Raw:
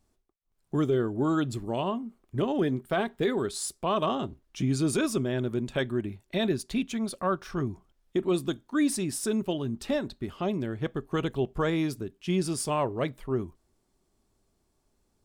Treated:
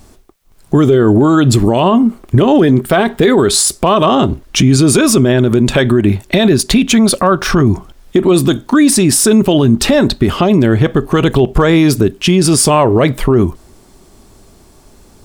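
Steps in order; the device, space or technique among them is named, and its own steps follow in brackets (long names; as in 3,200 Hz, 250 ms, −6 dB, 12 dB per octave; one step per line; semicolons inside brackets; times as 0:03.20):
loud club master (downward compressor 1.5 to 1, threshold −34 dBFS, peak gain reduction 5 dB; hard clipping −22 dBFS, distortion −43 dB; boost into a limiter +30 dB)
level −1 dB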